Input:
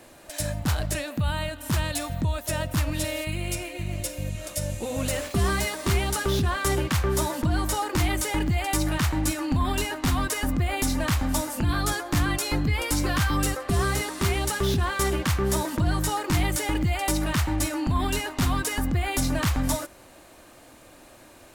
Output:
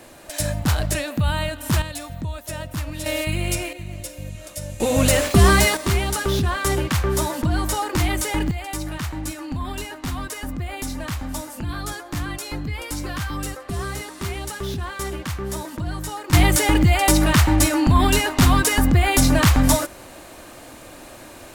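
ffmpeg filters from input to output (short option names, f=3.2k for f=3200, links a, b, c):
-af "asetnsamples=n=441:p=0,asendcmd='1.82 volume volume -3dB;3.06 volume volume 6dB;3.73 volume volume -2.5dB;4.8 volume volume 10.5dB;5.77 volume volume 3dB;8.51 volume volume -4dB;16.33 volume volume 9dB',volume=5dB"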